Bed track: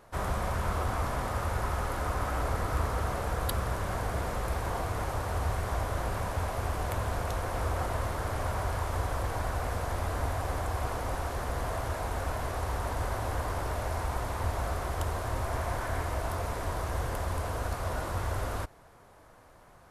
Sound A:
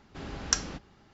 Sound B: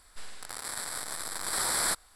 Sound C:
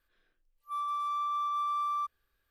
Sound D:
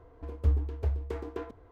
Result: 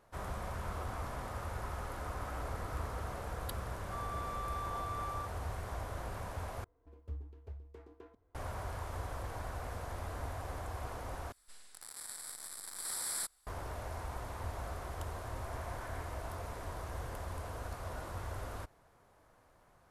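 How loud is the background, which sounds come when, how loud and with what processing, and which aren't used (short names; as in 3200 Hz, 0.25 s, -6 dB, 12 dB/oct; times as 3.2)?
bed track -9.5 dB
3.21 add C -10 dB
6.64 replace with D -17.5 dB
11.32 replace with B -16 dB + high shelf 5100 Hz +10.5 dB
not used: A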